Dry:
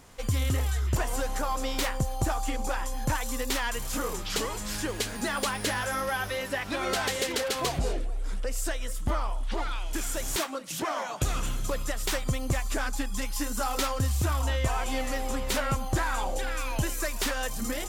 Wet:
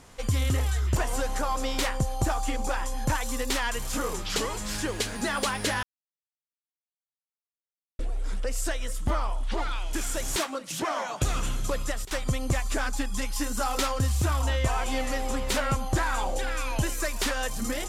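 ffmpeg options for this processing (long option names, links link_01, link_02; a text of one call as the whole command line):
ffmpeg -i in.wav -filter_complex "[0:a]asplit=5[link_01][link_02][link_03][link_04][link_05];[link_01]atrim=end=5.83,asetpts=PTS-STARTPTS,afade=type=out:start_time=5.826:duration=0.004:curve=hsin[link_06];[link_02]atrim=start=5.83:end=7.99,asetpts=PTS-STARTPTS,volume=0[link_07];[link_03]atrim=start=7.99:end=12.05,asetpts=PTS-STARTPTS,afade=type=in:duration=0.004:curve=hsin,afade=type=out:start_time=3.77:duration=0.29:curve=log:silence=0.125893[link_08];[link_04]atrim=start=12.05:end=12.11,asetpts=PTS-STARTPTS,volume=-18dB[link_09];[link_05]atrim=start=12.11,asetpts=PTS-STARTPTS,afade=type=in:duration=0.29:curve=log:silence=0.125893[link_10];[link_06][link_07][link_08][link_09][link_10]concat=n=5:v=0:a=1,lowpass=12000,volume=1.5dB" out.wav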